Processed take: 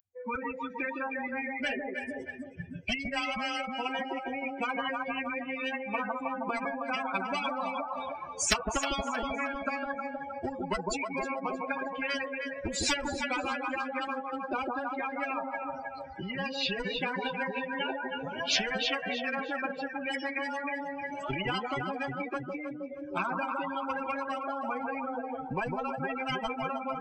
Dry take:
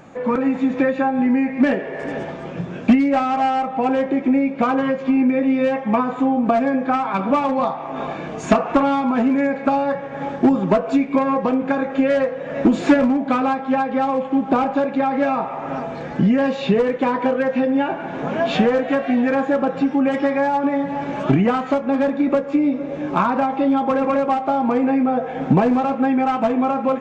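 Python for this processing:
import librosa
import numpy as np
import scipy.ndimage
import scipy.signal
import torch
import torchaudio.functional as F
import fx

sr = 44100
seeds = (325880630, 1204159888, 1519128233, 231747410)

p1 = fx.bin_expand(x, sr, power=3.0)
p2 = fx.low_shelf(p1, sr, hz=180.0, db=3.5)
p3 = p2 + fx.echo_alternate(p2, sr, ms=157, hz=850.0, feedback_pct=54, wet_db=-9.0, dry=0)
y = fx.spectral_comp(p3, sr, ratio=10.0)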